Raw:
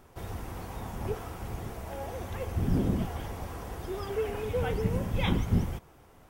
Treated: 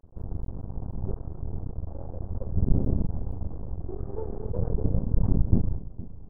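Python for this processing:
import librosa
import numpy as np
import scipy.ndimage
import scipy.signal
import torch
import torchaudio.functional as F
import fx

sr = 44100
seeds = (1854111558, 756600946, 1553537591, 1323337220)

y = fx.tilt_eq(x, sr, slope=-3.5)
y = np.maximum(y, 0.0)
y = fx.dmg_buzz(y, sr, base_hz=120.0, harmonics=28, level_db=-51.0, tilt_db=0, odd_only=False, at=(4.01, 4.49), fade=0.02)
y = scipy.ndimage.gaussian_filter1d(y, 8.8, mode='constant')
y = fx.echo_feedback(y, sr, ms=463, feedback_pct=31, wet_db=-17.0)
y = y * librosa.db_to_amplitude(-3.5)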